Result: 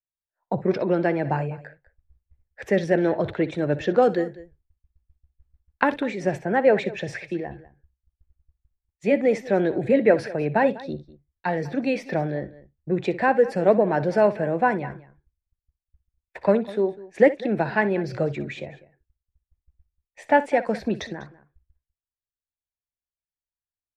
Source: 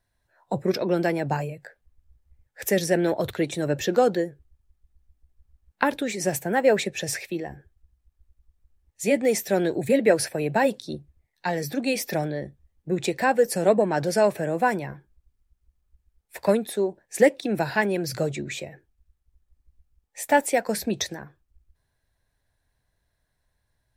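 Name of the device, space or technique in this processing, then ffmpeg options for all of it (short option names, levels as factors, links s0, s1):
hearing-loss simulation: -filter_complex "[0:a]asettb=1/sr,asplit=3[s0][s1][s2];[s0]atrim=end=4.024[s3];[s1]atrim=start=4.02:end=6,asetpts=PTS-STARTPTS,afade=t=in:d=0.004:c=qsin,afade=t=out:st=1.976:d=0.004:c=qsin,aemphasis=mode=production:type=50kf[s4];[s2]atrim=start=5.996[s5];[s3][s4]acrossfade=d=0.004:c1=hsin:c2=qsin[s6];[s6][s5]acrossfade=d=0.004:c1=qsin:c2=hsin,lowpass=2400,agate=range=0.0224:threshold=0.00355:ratio=3:detection=peak,aecho=1:1:61|198:0.15|0.112,volume=1.19"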